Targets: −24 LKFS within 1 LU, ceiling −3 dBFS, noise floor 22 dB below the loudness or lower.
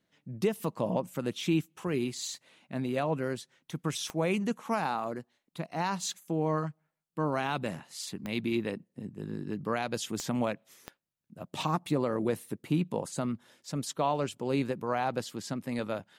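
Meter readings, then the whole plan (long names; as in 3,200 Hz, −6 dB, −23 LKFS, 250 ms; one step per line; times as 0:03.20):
number of clicks 4; integrated loudness −33.0 LKFS; sample peak −17.0 dBFS; target loudness −24.0 LKFS
→ click removal
level +9 dB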